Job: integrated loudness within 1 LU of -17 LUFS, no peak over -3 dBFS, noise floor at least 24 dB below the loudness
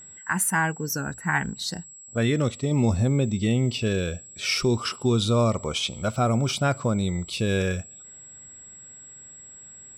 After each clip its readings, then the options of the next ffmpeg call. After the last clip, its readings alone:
steady tone 7700 Hz; tone level -43 dBFS; loudness -25.0 LUFS; peak -11.5 dBFS; loudness target -17.0 LUFS
-> -af "bandreject=f=7.7k:w=30"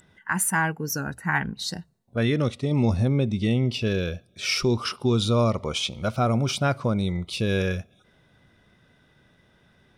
steady tone none; loudness -25.0 LUFS; peak -11.5 dBFS; loudness target -17.0 LUFS
-> -af "volume=8dB"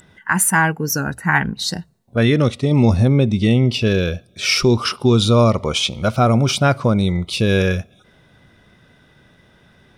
loudness -17.0 LUFS; peak -3.5 dBFS; noise floor -54 dBFS

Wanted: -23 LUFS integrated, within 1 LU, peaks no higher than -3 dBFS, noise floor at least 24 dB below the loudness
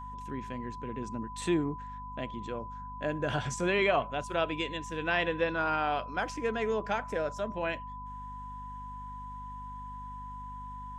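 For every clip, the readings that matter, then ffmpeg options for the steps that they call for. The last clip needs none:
hum 50 Hz; harmonics up to 250 Hz; hum level -44 dBFS; steady tone 1000 Hz; tone level -41 dBFS; loudness -33.5 LUFS; peak -13.5 dBFS; loudness target -23.0 LUFS
-> -af "bandreject=f=50:t=h:w=6,bandreject=f=100:t=h:w=6,bandreject=f=150:t=h:w=6,bandreject=f=200:t=h:w=6,bandreject=f=250:t=h:w=6"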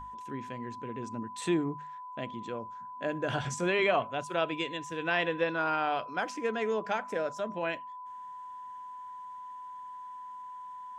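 hum none; steady tone 1000 Hz; tone level -41 dBFS
-> -af "bandreject=f=1k:w=30"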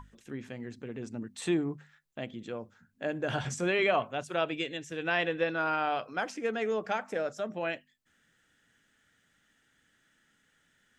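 steady tone none; loudness -33.0 LUFS; peak -14.5 dBFS; loudness target -23.0 LUFS
-> -af "volume=10dB"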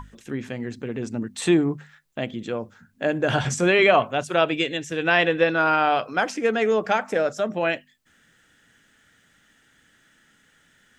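loudness -23.0 LUFS; peak -4.5 dBFS; noise floor -61 dBFS

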